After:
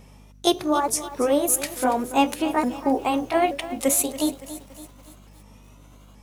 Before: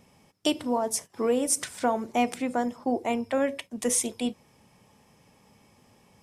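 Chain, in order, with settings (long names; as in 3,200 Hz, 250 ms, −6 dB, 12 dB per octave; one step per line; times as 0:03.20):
pitch shifter swept by a sawtooth +4.5 semitones, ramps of 878 ms
mains hum 50 Hz, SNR 25 dB
feedback echo at a low word length 282 ms, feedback 55%, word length 8 bits, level −14 dB
level +6 dB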